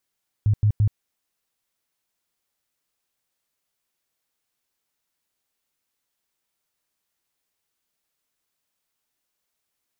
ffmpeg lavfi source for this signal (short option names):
-f lavfi -i "aevalsrc='0.188*sin(2*PI*105*mod(t,0.17))*lt(mod(t,0.17),8/105)':d=0.51:s=44100"